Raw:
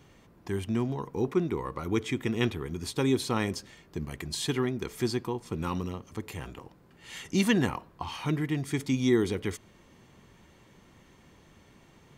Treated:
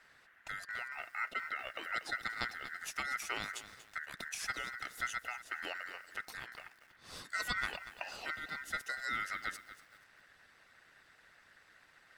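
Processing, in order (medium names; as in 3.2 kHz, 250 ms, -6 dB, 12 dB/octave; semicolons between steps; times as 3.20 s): ring modulator 1.7 kHz; in parallel at +0.5 dB: compression, threshold -40 dBFS, peak gain reduction 17.5 dB; on the sum: harmonic-percussive split harmonic -8 dB; bit-crushed delay 237 ms, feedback 35%, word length 8-bit, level -13 dB; trim -6.5 dB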